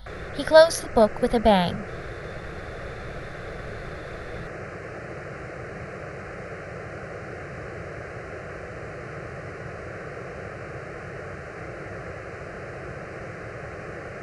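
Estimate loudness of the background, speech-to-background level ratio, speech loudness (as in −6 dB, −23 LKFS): −36.5 LKFS, 17.0 dB, −19.5 LKFS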